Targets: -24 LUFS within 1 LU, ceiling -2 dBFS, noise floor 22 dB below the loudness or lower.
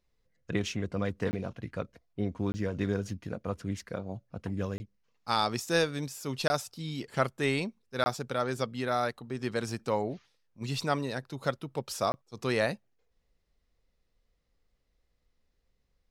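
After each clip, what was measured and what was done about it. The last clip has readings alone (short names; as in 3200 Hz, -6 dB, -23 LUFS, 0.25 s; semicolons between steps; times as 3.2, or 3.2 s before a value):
dropouts 6; longest dropout 20 ms; loudness -33.0 LUFS; peak -12.0 dBFS; loudness target -24.0 LUFS
-> interpolate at 1.31/2.52/4.78/6.48/8.04/12.12, 20 ms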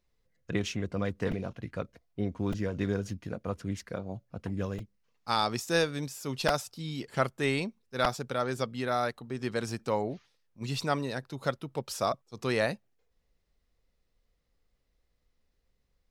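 dropouts 0; loudness -33.0 LUFS; peak -11.5 dBFS; loudness target -24.0 LUFS
-> gain +9 dB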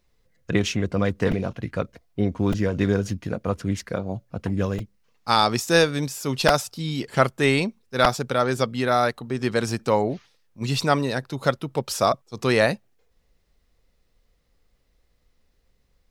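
loudness -24.0 LUFS; peak -2.5 dBFS; noise floor -67 dBFS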